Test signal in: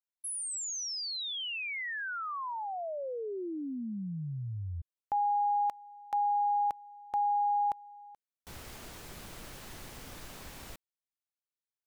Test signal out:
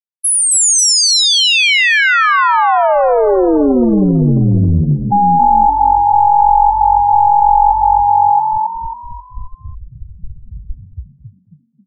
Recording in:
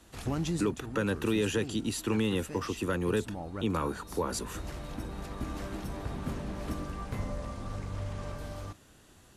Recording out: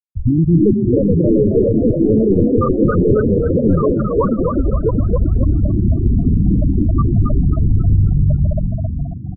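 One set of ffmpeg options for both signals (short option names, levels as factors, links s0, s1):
-filter_complex "[0:a]asplit=2[s0][s1];[s1]aecho=0:1:679:0.473[s2];[s0][s2]amix=inputs=2:normalize=0,acrusher=bits=6:mode=log:mix=0:aa=0.000001,apsyclip=31.6,aeval=exprs='(tanh(2.24*val(0)+0.3)-tanh(0.3))/2.24':c=same,afftfilt=real='re*gte(hypot(re,im),1.58)':imag='im*gte(hypot(re,im),1.58)':win_size=1024:overlap=0.75,asplit=2[s3][s4];[s4]asplit=5[s5][s6][s7][s8][s9];[s5]adelay=270,afreqshift=45,volume=0.631[s10];[s6]adelay=540,afreqshift=90,volume=0.245[s11];[s7]adelay=810,afreqshift=135,volume=0.0955[s12];[s8]adelay=1080,afreqshift=180,volume=0.0376[s13];[s9]adelay=1350,afreqshift=225,volume=0.0146[s14];[s10][s11][s12][s13][s14]amix=inputs=5:normalize=0[s15];[s3][s15]amix=inputs=2:normalize=0,volume=0.891"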